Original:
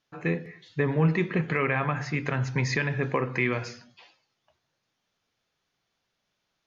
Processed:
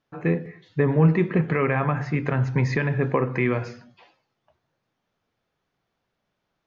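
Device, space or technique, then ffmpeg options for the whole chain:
through cloth: -af "highshelf=frequency=2400:gain=-15,volume=5.5dB"

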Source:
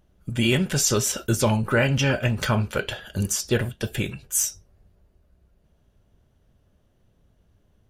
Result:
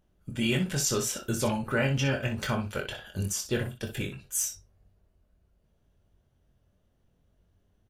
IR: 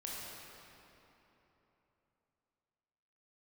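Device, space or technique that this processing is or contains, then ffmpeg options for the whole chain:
slapback doubling: -filter_complex "[0:a]asplit=3[link_01][link_02][link_03];[link_02]adelay=22,volume=-6dB[link_04];[link_03]adelay=61,volume=-10dB[link_05];[link_01][link_04][link_05]amix=inputs=3:normalize=0,volume=-7.5dB"

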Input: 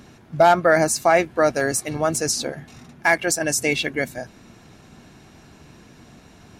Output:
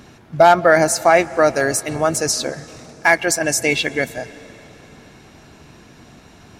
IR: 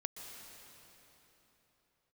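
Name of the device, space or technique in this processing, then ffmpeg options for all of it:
filtered reverb send: -filter_complex "[0:a]asplit=2[link_01][link_02];[link_02]highpass=frequency=190:width=0.5412,highpass=frequency=190:width=1.3066,lowpass=7700[link_03];[1:a]atrim=start_sample=2205[link_04];[link_03][link_04]afir=irnorm=-1:irlink=0,volume=-11.5dB[link_05];[link_01][link_05]amix=inputs=2:normalize=0,volume=2.5dB"

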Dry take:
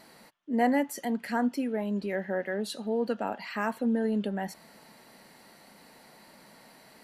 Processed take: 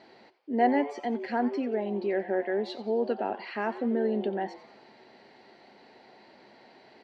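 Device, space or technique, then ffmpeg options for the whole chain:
frequency-shifting delay pedal into a guitar cabinet: -filter_complex "[0:a]asplit=5[link_01][link_02][link_03][link_04][link_05];[link_02]adelay=90,afreqshift=150,volume=-16dB[link_06];[link_03]adelay=180,afreqshift=300,volume=-22.2dB[link_07];[link_04]adelay=270,afreqshift=450,volume=-28.4dB[link_08];[link_05]adelay=360,afreqshift=600,volume=-34.6dB[link_09];[link_01][link_06][link_07][link_08][link_09]amix=inputs=5:normalize=0,highpass=77,equalizer=frequency=170:width_type=q:width=4:gain=-9,equalizer=frequency=380:width_type=q:width=4:gain=9,equalizer=frequency=760:width_type=q:width=4:gain=5,equalizer=frequency=1200:width_type=q:width=4:gain=-6,lowpass=frequency=4500:width=0.5412,lowpass=frequency=4500:width=1.3066,volume=-1dB"

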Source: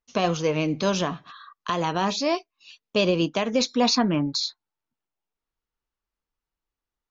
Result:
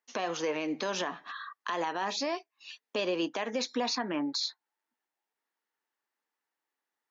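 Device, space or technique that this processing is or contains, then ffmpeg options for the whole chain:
laptop speaker: -af "highpass=frequency=250:width=0.5412,highpass=frequency=250:width=1.3066,equalizer=frequency=850:width_type=o:width=0.42:gain=6,equalizer=frequency=1800:width_type=o:width=0.45:gain=9.5,alimiter=limit=-22dB:level=0:latency=1:release=258"

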